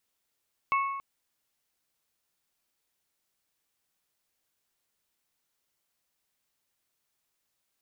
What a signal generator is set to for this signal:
struck glass bell, length 0.28 s, lowest mode 1,100 Hz, modes 3, decay 1.26 s, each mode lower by 6.5 dB, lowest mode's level −22 dB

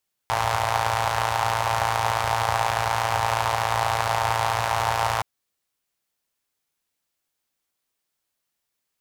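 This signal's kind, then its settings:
pulse-train model of a four-cylinder engine, steady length 4.92 s, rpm 3,400, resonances 90/830 Hz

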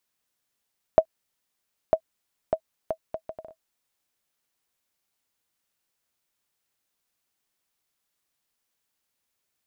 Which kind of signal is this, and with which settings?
bouncing ball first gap 0.95 s, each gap 0.63, 642 Hz, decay 73 ms −4.5 dBFS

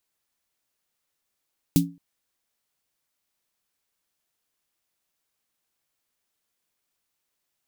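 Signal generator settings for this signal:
synth snare length 0.22 s, tones 170 Hz, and 280 Hz, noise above 3,000 Hz, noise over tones −7.5 dB, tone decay 0.31 s, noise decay 0.13 s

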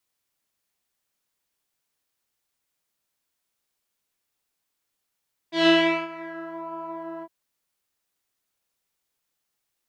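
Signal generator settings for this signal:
subtractive patch with pulse-width modulation E4, oscillator 2 saw, detune 30 cents, sub −22 dB, filter lowpass, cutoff 990 Hz, filter envelope 2 octaves, filter decay 1.12 s, filter sustain 5%, attack 145 ms, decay 0.41 s, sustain −20.5 dB, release 0.06 s, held 1.70 s, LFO 1.4 Hz, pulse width 23%, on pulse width 6%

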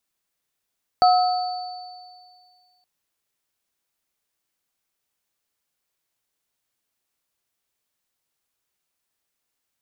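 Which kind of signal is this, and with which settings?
inharmonic partials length 1.82 s, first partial 730 Hz, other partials 1,290/4,510 Hz, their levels −10/−13 dB, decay 1.93 s, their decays 1.23/2.64 s, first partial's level −11 dB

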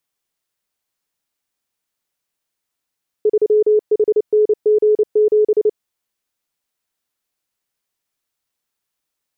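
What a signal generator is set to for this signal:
Morse code "3HNG7" 29 words per minute 425 Hz −9.5 dBFS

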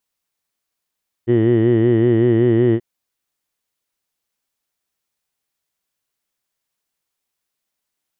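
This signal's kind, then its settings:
vowel from formants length 1.53 s, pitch 115 Hz, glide +0.5 semitones, F1 360 Hz, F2 1,900 Hz, F3 3,000 Hz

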